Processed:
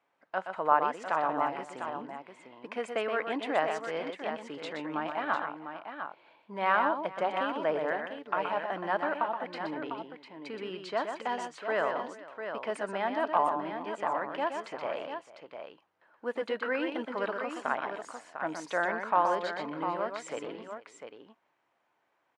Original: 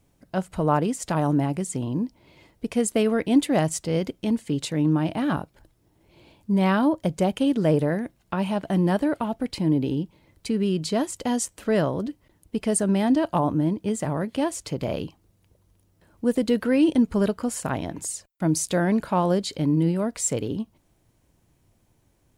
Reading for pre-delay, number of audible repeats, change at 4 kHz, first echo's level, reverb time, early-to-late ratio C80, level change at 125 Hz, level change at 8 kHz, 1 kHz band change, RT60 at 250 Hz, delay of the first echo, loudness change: no reverb, 3, -8.0 dB, -6.5 dB, no reverb, no reverb, -26.0 dB, -22.5 dB, +1.0 dB, no reverb, 123 ms, -8.0 dB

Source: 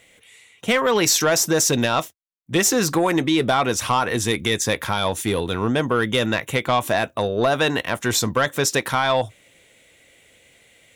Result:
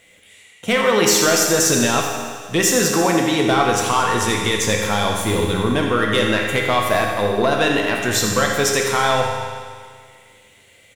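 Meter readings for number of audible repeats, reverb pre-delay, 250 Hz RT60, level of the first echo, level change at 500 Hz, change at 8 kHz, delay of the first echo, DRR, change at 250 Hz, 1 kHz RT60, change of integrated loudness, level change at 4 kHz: 1, 10 ms, 1.9 s, -10.5 dB, +3.0 dB, +3.0 dB, 83 ms, 0.0 dB, +2.5 dB, 1.9 s, +3.0 dB, +2.5 dB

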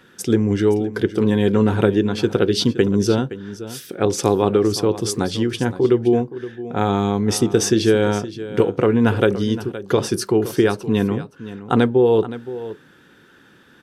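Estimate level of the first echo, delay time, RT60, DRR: -14.5 dB, 519 ms, no reverb, no reverb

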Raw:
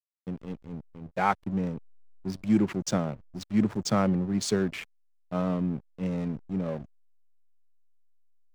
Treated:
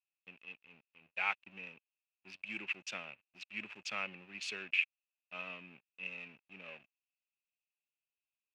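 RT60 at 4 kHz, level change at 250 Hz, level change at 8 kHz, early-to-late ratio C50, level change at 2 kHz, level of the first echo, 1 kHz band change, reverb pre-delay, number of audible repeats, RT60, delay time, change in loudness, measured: no reverb, -29.5 dB, -15.0 dB, no reverb, +2.5 dB, no echo, -15.0 dB, no reverb, no echo, no reverb, no echo, -10.5 dB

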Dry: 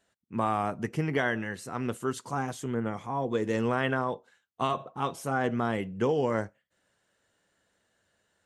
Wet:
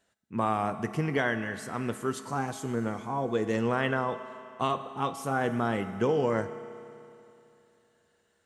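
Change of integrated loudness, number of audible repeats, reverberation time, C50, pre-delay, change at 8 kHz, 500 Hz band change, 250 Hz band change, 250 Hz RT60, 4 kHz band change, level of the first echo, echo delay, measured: 0.0 dB, no echo, 2.8 s, 11.0 dB, 5 ms, +0.5 dB, +0.5 dB, +0.5 dB, 2.8 s, +0.5 dB, no echo, no echo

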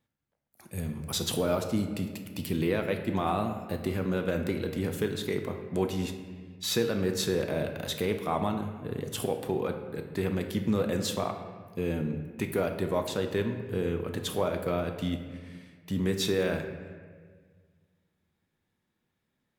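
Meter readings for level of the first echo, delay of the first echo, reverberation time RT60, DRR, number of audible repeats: no echo, no echo, 1.6 s, 5.0 dB, no echo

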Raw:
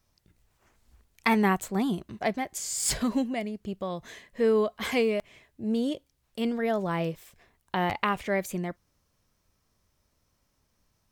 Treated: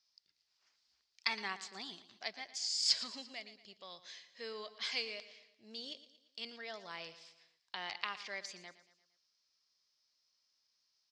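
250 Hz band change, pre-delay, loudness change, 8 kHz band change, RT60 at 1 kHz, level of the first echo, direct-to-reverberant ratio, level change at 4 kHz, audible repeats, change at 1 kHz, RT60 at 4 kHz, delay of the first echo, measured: -28.5 dB, no reverb, -11.0 dB, -11.0 dB, no reverb, -15.0 dB, no reverb, +1.5 dB, 4, -16.5 dB, no reverb, 115 ms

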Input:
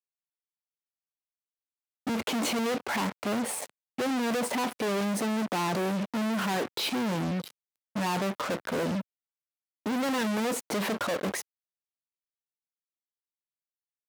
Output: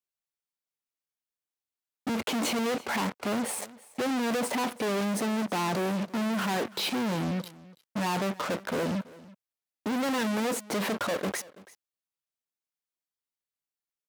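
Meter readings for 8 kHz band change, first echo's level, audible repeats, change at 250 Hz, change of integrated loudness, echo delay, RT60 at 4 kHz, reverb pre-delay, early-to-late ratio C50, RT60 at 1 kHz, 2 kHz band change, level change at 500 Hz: 0.0 dB, -20.5 dB, 1, 0.0 dB, 0.0 dB, 332 ms, no reverb, no reverb, no reverb, no reverb, 0.0 dB, 0.0 dB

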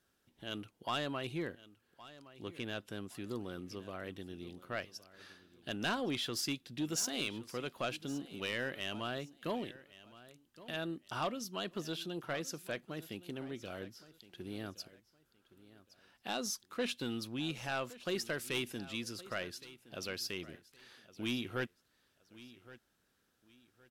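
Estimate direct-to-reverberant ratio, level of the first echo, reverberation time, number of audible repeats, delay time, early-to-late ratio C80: no reverb, -18.0 dB, no reverb, 2, 1117 ms, no reverb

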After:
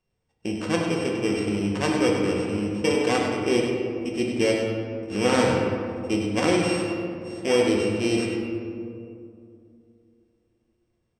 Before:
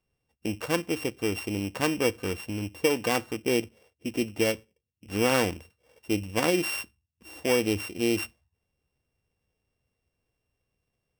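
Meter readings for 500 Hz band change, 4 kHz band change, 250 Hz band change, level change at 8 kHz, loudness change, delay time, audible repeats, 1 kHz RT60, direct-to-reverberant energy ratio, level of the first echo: +5.0 dB, +2.0 dB, +6.0 dB, 0.0 dB, +4.0 dB, 100 ms, 1, 2.3 s, -2.0 dB, -7.0 dB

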